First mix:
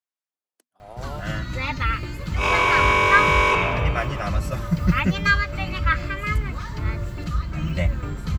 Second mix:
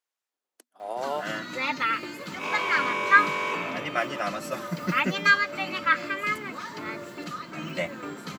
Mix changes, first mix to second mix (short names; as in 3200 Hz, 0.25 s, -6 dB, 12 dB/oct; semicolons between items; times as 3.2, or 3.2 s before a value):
speech +8.0 dB; second sound -10.5 dB; master: add HPF 230 Hz 24 dB/oct